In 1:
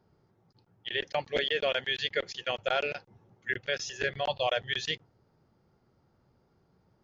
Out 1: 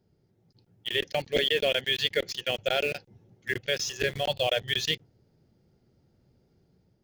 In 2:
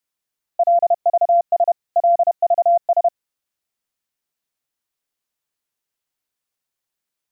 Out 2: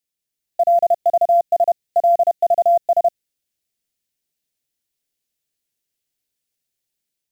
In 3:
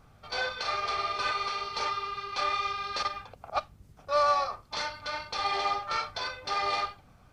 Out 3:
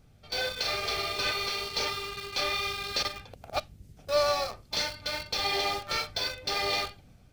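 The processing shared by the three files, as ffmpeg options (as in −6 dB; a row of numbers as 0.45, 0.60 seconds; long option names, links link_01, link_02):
-filter_complex "[0:a]dynaudnorm=framelen=170:gausssize=5:maxgain=4dB,equalizer=frequency=1100:width=1.2:gain=-14.5,asplit=2[link_01][link_02];[link_02]acrusher=bits=5:mix=0:aa=0.000001,volume=-8dB[link_03];[link_01][link_03]amix=inputs=2:normalize=0"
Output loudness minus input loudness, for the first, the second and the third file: +3.5, +0.5, +1.0 LU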